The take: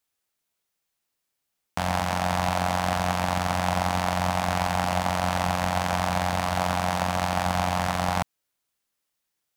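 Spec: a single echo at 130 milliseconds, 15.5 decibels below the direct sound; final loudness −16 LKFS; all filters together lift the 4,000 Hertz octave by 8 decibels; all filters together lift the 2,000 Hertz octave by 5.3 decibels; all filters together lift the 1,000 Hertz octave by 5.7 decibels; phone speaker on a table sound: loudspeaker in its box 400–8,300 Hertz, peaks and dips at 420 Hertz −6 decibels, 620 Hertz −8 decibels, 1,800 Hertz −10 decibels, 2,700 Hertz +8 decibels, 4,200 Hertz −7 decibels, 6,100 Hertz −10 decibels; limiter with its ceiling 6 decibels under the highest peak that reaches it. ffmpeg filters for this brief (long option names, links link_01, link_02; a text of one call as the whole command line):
ffmpeg -i in.wav -af "equalizer=frequency=1000:width_type=o:gain=8.5,equalizer=frequency=2000:width_type=o:gain=3.5,equalizer=frequency=4000:width_type=o:gain=9,alimiter=limit=-6.5dB:level=0:latency=1,highpass=frequency=400:width=0.5412,highpass=frequency=400:width=1.3066,equalizer=frequency=420:width_type=q:width=4:gain=-6,equalizer=frequency=620:width_type=q:width=4:gain=-8,equalizer=frequency=1800:width_type=q:width=4:gain=-10,equalizer=frequency=2700:width_type=q:width=4:gain=8,equalizer=frequency=4200:width_type=q:width=4:gain=-7,equalizer=frequency=6100:width_type=q:width=4:gain=-10,lowpass=frequency=8300:width=0.5412,lowpass=frequency=8300:width=1.3066,aecho=1:1:130:0.168,volume=8.5dB" out.wav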